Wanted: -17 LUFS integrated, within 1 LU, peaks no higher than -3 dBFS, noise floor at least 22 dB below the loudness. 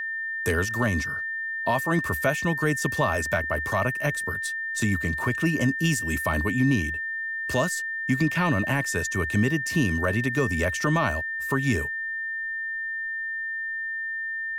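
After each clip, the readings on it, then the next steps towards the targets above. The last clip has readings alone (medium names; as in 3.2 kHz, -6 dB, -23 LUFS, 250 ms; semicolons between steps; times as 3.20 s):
steady tone 1.8 kHz; tone level -28 dBFS; loudness -25.5 LUFS; peak level -12.0 dBFS; loudness target -17.0 LUFS
-> band-stop 1.8 kHz, Q 30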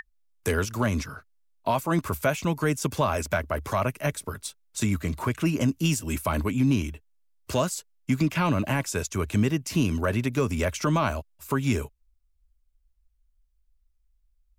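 steady tone not found; loudness -27.0 LUFS; peak level -13.5 dBFS; loudness target -17.0 LUFS
-> trim +10 dB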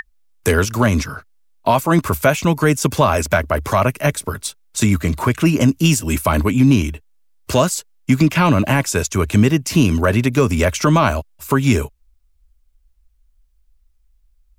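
loudness -17.0 LUFS; peak level -3.5 dBFS; noise floor -59 dBFS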